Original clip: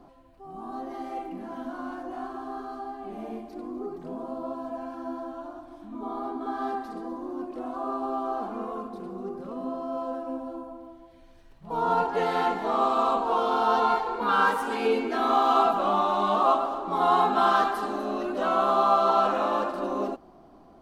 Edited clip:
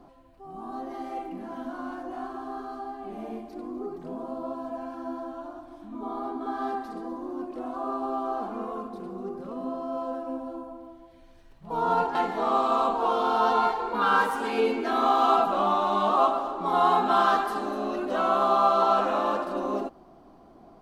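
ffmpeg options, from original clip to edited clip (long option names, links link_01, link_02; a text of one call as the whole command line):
ffmpeg -i in.wav -filter_complex "[0:a]asplit=2[link_01][link_02];[link_01]atrim=end=12.152[link_03];[link_02]atrim=start=12.418[link_04];[link_03][link_04]acrossfade=duration=0.004:curve1=hsin:curve2=hsin" out.wav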